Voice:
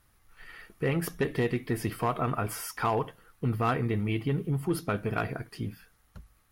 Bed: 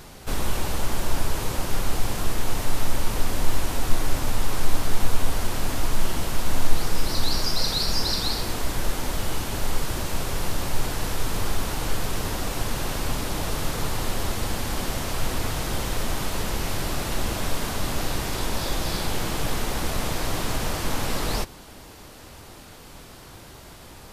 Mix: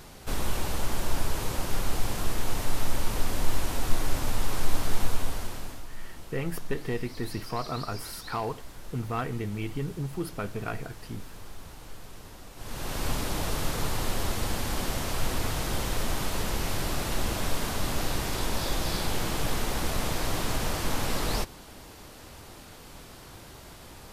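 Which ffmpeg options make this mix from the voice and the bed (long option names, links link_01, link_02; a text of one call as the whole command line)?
ffmpeg -i stem1.wav -i stem2.wav -filter_complex "[0:a]adelay=5500,volume=-4dB[link_01];[1:a]volume=12.5dB,afade=type=out:start_time=4.97:duration=0.88:silence=0.177828,afade=type=in:start_time=12.56:duration=0.51:silence=0.158489[link_02];[link_01][link_02]amix=inputs=2:normalize=0" out.wav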